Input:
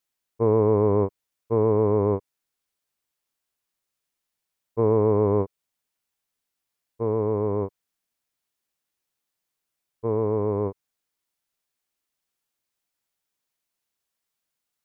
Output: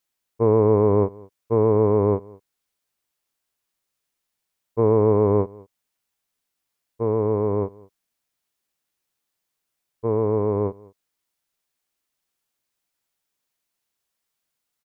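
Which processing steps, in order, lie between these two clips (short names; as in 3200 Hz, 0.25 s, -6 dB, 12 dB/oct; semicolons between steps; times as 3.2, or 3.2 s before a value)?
echo 0.203 s -23.5 dB; gain +2.5 dB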